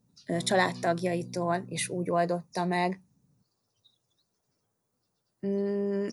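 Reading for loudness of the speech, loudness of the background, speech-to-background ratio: -29.5 LUFS, -45.0 LUFS, 15.5 dB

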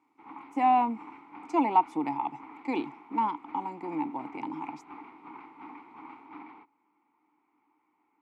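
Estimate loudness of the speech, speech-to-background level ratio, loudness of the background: -30.0 LUFS, 18.0 dB, -48.0 LUFS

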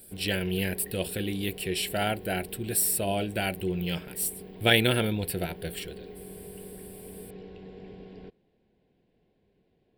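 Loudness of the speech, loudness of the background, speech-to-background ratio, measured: -28.5 LUFS, -45.5 LUFS, 17.0 dB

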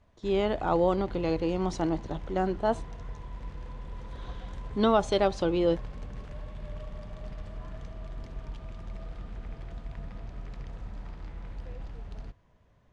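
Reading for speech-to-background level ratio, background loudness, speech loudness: 15.0 dB, -43.0 LUFS, -28.0 LUFS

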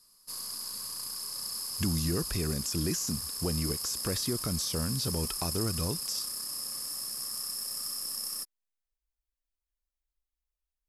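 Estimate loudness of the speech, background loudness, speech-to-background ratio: -33.5 LUFS, -34.0 LUFS, 0.5 dB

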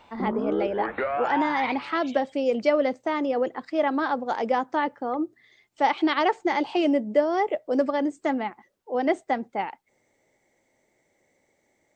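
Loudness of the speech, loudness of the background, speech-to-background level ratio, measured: -26.0 LUFS, -29.5 LUFS, 3.5 dB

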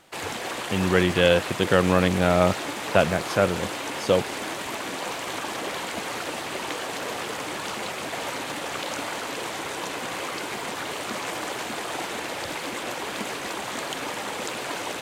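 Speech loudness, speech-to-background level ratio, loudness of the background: -22.5 LUFS, 8.0 dB, -30.5 LUFS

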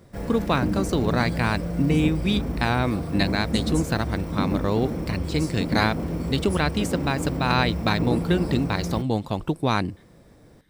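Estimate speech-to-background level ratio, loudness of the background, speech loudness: 3.5 dB, -29.0 LUFS, -25.5 LUFS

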